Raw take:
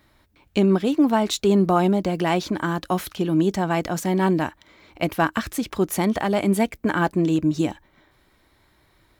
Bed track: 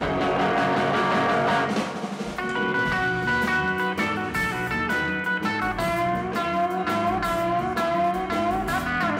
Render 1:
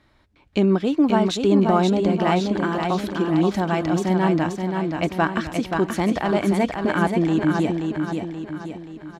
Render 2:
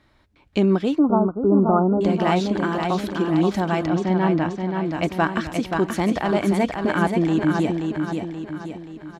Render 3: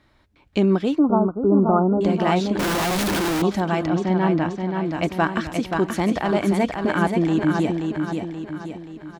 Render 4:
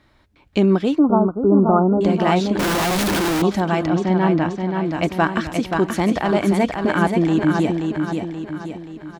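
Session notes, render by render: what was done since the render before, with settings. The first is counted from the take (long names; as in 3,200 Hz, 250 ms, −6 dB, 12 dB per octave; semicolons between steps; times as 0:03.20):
high-frequency loss of the air 64 metres; repeating echo 529 ms, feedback 49%, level −5 dB
0:00.99–0:02.01: linear-phase brick-wall low-pass 1,500 Hz; 0:03.87–0:04.86: high-frequency loss of the air 120 metres
0:02.59–0:03.42: sign of each sample alone
level +2.5 dB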